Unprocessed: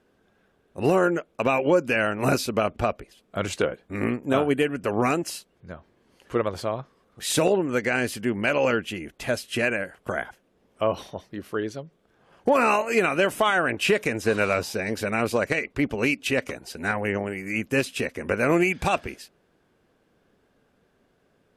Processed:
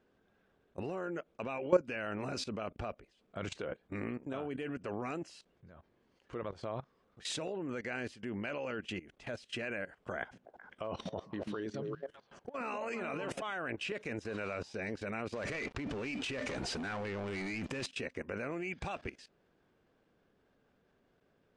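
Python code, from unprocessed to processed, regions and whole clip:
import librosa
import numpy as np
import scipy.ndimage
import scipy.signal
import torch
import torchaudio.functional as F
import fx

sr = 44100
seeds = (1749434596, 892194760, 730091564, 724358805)

y = fx.chain(x, sr, fx.low_shelf(hz=86.0, db=-3.5),
    fx.over_compress(threshold_db=-29.0, ratio=-1.0),
    fx.echo_stepped(ms=129, hz=180.0, octaves=1.4, feedback_pct=70, wet_db=-1.0), at=(10.2, 13.42))
y = fx.chain(y, sr, fx.comb_fb(f0_hz=600.0, decay_s=0.22, harmonics='all', damping=0.0, mix_pct=30),
    fx.over_compress(threshold_db=-38.0, ratio=-1.0),
    fx.leveller(passes=5), at=(15.33, 17.86))
y = scipy.signal.sosfilt(scipy.signal.bessel(8, 5500.0, 'lowpass', norm='mag', fs=sr, output='sos'), y)
y = fx.level_steps(y, sr, step_db=17)
y = y * 10.0 ** (-4.5 / 20.0)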